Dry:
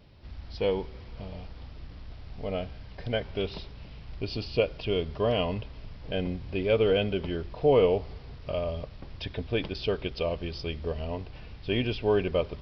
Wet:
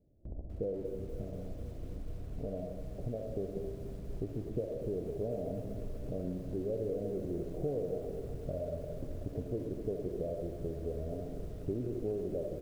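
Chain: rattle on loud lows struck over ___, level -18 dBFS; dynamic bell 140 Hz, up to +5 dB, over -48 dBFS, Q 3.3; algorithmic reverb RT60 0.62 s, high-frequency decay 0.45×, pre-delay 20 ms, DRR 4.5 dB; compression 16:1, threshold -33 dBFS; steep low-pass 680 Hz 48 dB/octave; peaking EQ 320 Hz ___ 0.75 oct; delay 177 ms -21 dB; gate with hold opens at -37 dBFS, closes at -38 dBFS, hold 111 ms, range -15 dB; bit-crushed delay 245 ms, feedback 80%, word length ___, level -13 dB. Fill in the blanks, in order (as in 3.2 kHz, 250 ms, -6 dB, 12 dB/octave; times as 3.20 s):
-35 dBFS, +5.5 dB, 9-bit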